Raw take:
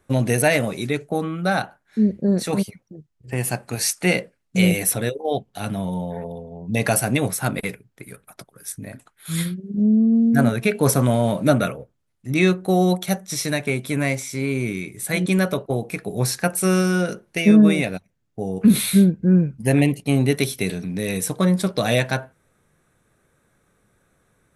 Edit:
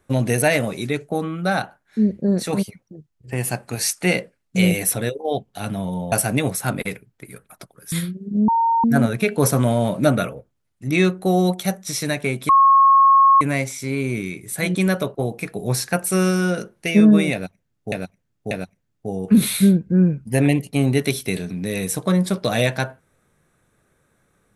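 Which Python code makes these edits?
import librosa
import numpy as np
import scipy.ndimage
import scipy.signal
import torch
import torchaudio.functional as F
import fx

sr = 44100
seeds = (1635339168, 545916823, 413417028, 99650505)

y = fx.edit(x, sr, fx.cut(start_s=6.12, length_s=0.78),
    fx.cut(start_s=8.7, length_s=0.65),
    fx.bleep(start_s=9.91, length_s=0.36, hz=918.0, db=-14.5),
    fx.insert_tone(at_s=13.92, length_s=0.92, hz=1090.0, db=-9.0),
    fx.repeat(start_s=17.84, length_s=0.59, count=3), tone=tone)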